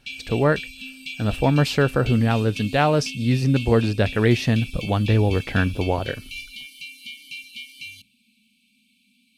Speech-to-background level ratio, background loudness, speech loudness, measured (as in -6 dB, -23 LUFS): 13.5 dB, -35.0 LUFS, -21.5 LUFS